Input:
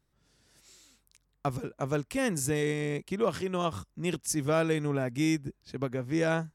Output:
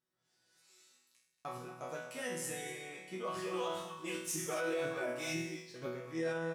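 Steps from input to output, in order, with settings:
slap from a distant wall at 40 metres, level −10 dB
0:03.36–0:05.89: phase shifter 2 Hz, delay 4.2 ms, feedback 77%
high-pass filter 420 Hz 6 dB per octave
resonators tuned to a chord B2 sus4, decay 0.72 s
brickwall limiter −39 dBFS, peak gain reduction 9.5 dB
level +11.5 dB

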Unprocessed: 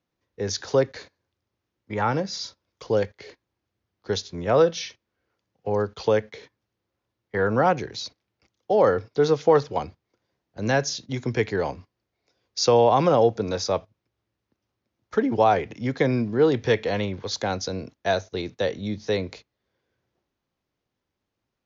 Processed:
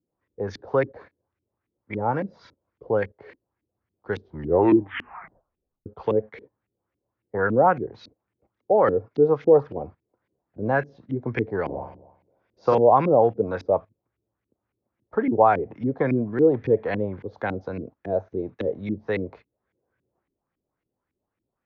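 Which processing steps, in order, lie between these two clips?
0:04.18: tape stop 1.68 s
0:11.64–0:12.75: flutter between parallel walls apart 7.7 metres, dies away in 0.8 s
auto-filter low-pass saw up 3.6 Hz 260–2,400 Hz
level −2.5 dB

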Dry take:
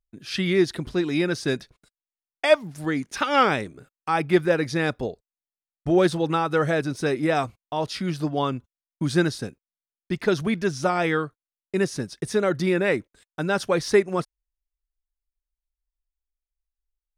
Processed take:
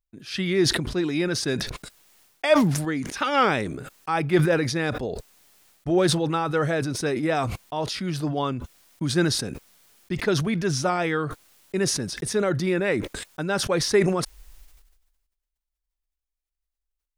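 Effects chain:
level that may fall only so fast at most 48 dB per second
level −2 dB

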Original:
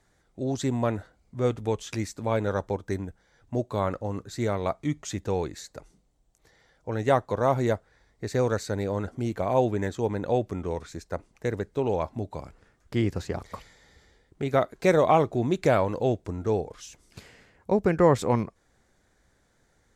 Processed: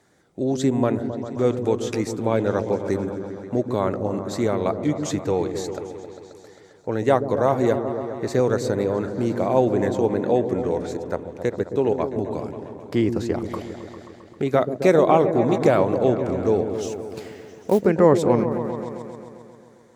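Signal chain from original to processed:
high-pass filter 110 Hz
parametric band 350 Hz +5 dB 1.5 octaves
in parallel at −1 dB: downward compressor, threshold −32 dBFS, peak gain reduction 19.5 dB
0:10.89–0:11.98: on the sum: gate pattern "x.xx.xx.xx." 171 BPM −12 dB
0:16.75–0:17.86: log-companded quantiser 6 bits
on a send: echo whose low-pass opens from repeat to repeat 133 ms, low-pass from 400 Hz, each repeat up 1 octave, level −6 dB

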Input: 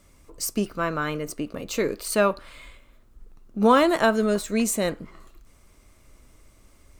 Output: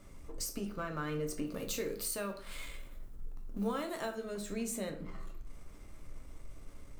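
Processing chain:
mu-law and A-law mismatch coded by mu
0:01.45–0:04.15: high-shelf EQ 6,300 Hz +10.5 dB
downward compressor 5 to 1, threshold −31 dBFS, peak gain reduction 16.5 dB
rectangular room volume 44 cubic metres, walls mixed, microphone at 0.4 metres
one half of a high-frequency compander decoder only
level −6.5 dB

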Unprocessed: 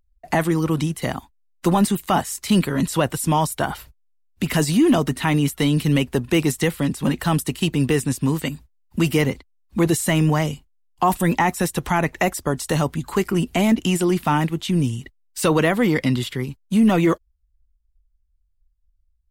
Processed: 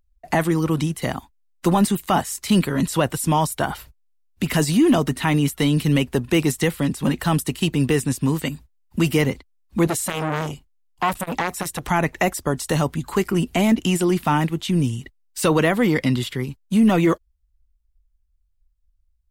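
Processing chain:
0:09.87–0:11.88: saturating transformer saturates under 1,400 Hz

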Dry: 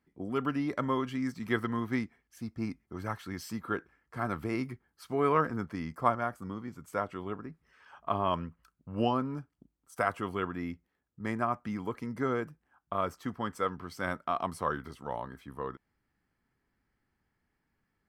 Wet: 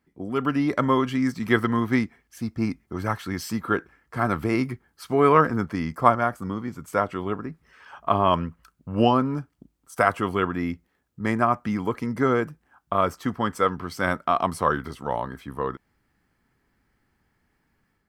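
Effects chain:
automatic gain control gain up to 5 dB
level +4.5 dB

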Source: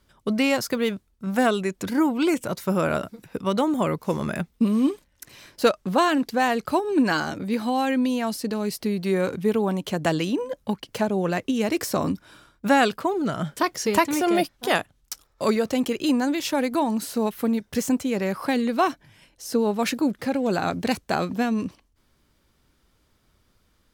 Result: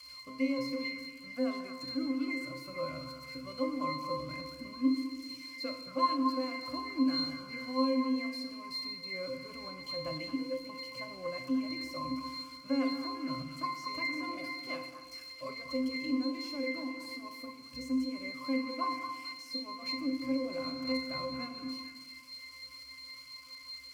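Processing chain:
spike at every zero crossing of −18 dBFS
tilt shelving filter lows −8.5 dB, about 1,200 Hz
in parallel at −2 dB: speech leveller 0.5 s
on the sum: resonances in every octave C, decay 0.7 s
echo through a band-pass that steps 224 ms, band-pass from 1,200 Hz, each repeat 0.7 octaves, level −5 dB
feedback delay network reverb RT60 1.4 s, low-frequency decay 1.3×, high-frequency decay 0.9×, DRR 5 dB
level +5 dB

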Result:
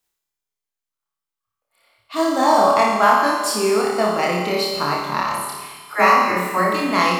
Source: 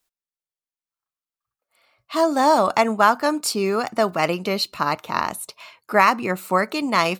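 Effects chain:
0:05.23–0:06.73: all-pass dispersion lows, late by 73 ms, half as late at 600 Hz
on a send: flutter between parallel walls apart 4.8 metres, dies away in 0.62 s
on the sum: four-comb reverb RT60 1.6 s, combs from 27 ms, DRR 2.5 dB
level −2.5 dB

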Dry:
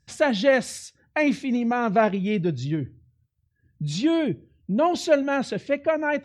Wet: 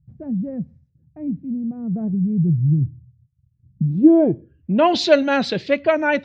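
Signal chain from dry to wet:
low-pass filter sweep 150 Hz → 4,300 Hz, 0:03.67–0:04.99
0:01.30–0:01.96: downward compressor 1.5 to 1, threshold −30 dBFS, peak gain reduction 3 dB
level +5 dB

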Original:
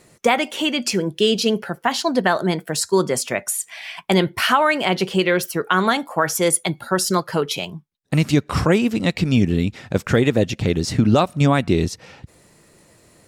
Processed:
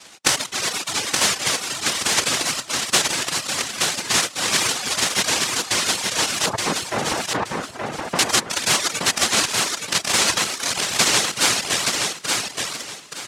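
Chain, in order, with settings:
cochlear-implant simulation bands 1
0:06.46–0:08.19: low-pass filter 1,100 Hz 12 dB per octave
in parallel at −0.5 dB: compressor whose output falls as the input rises −29 dBFS, ratio −0.5
on the sum: reverb reduction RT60 1.4 s
tape wow and flutter 46 cents
on a send: repeating echo 873 ms, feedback 26%, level −4 dB
on the sum: level −2.5 dB

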